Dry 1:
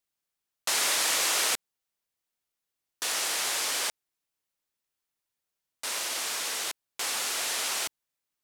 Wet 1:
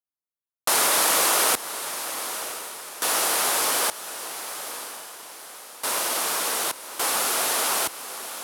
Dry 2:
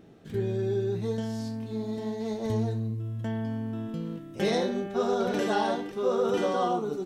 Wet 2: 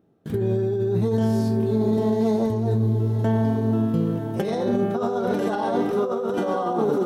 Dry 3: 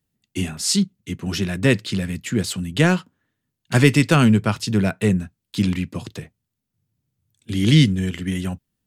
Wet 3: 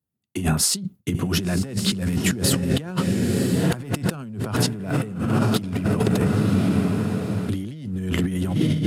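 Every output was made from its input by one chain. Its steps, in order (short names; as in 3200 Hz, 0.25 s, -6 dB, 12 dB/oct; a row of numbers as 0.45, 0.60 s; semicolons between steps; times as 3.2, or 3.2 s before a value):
gate with hold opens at -39 dBFS; soft clip -6 dBFS; HPF 55 Hz; band shelf 3700 Hz -8 dB 2.5 oct; diffused feedback echo 1 s, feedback 43%, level -11 dB; negative-ratio compressor -31 dBFS, ratio -1; match loudness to -23 LUFS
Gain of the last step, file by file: +11.0, +9.5, +6.5 dB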